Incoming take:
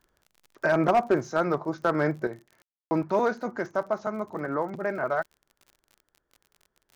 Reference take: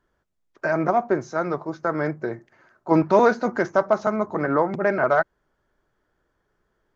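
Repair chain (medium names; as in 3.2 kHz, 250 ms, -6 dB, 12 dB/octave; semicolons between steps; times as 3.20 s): clip repair -14.5 dBFS; de-click; room tone fill 2.62–2.91 s; gain correction +8 dB, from 2.27 s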